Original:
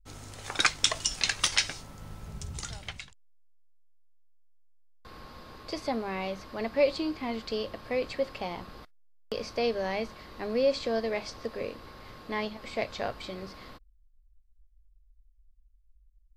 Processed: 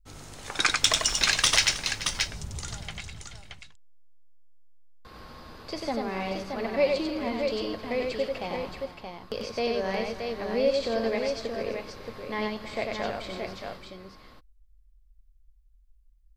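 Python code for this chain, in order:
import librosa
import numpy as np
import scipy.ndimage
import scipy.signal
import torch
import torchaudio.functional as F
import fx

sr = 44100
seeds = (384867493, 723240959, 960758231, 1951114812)

y = fx.leveller(x, sr, passes=1, at=(0.82, 1.65))
y = fx.echo_multitap(y, sr, ms=(94, 261, 319, 433, 625), db=(-3.5, -20.0, -17.0, -15.0, -5.5))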